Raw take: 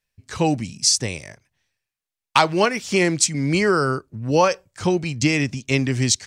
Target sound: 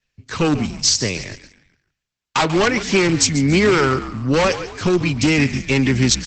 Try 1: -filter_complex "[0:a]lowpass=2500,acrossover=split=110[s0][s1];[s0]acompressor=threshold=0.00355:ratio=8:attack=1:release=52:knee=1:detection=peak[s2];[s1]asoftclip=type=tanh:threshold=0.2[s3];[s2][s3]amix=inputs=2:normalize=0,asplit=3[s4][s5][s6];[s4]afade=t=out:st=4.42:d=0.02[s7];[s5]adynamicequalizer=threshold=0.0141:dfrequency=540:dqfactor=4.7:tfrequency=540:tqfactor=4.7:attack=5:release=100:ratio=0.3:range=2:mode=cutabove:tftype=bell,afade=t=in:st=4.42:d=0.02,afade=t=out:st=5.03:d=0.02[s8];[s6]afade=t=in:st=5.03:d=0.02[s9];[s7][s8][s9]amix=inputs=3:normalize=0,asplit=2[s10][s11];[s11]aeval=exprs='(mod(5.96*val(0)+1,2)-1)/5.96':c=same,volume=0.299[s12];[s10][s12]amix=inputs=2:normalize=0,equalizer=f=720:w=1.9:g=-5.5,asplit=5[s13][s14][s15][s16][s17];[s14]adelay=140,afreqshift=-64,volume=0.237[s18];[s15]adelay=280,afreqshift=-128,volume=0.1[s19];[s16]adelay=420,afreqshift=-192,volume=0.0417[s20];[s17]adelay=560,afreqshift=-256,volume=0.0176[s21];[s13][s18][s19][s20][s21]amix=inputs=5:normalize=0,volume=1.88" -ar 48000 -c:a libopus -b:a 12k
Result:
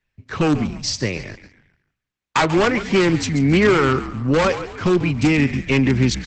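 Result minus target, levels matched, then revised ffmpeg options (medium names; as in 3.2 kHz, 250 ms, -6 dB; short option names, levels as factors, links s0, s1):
8 kHz band -9.5 dB
-filter_complex "[0:a]lowpass=6100,acrossover=split=110[s0][s1];[s0]acompressor=threshold=0.00355:ratio=8:attack=1:release=52:knee=1:detection=peak[s2];[s1]asoftclip=type=tanh:threshold=0.2[s3];[s2][s3]amix=inputs=2:normalize=0,asplit=3[s4][s5][s6];[s4]afade=t=out:st=4.42:d=0.02[s7];[s5]adynamicequalizer=threshold=0.0141:dfrequency=540:dqfactor=4.7:tfrequency=540:tqfactor=4.7:attack=5:release=100:ratio=0.3:range=2:mode=cutabove:tftype=bell,afade=t=in:st=4.42:d=0.02,afade=t=out:st=5.03:d=0.02[s8];[s6]afade=t=in:st=5.03:d=0.02[s9];[s7][s8][s9]amix=inputs=3:normalize=0,asplit=2[s10][s11];[s11]aeval=exprs='(mod(5.96*val(0)+1,2)-1)/5.96':c=same,volume=0.299[s12];[s10][s12]amix=inputs=2:normalize=0,equalizer=f=720:w=1.9:g=-5.5,asplit=5[s13][s14][s15][s16][s17];[s14]adelay=140,afreqshift=-64,volume=0.237[s18];[s15]adelay=280,afreqshift=-128,volume=0.1[s19];[s16]adelay=420,afreqshift=-192,volume=0.0417[s20];[s17]adelay=560,afreqshift=-256,volume=0.0176[s21];[s13][s18][s19][s20][s21]amix=inputs=5:normalize=0,volume=1.88" -ar 48000 -c:a libopus -b:a 12k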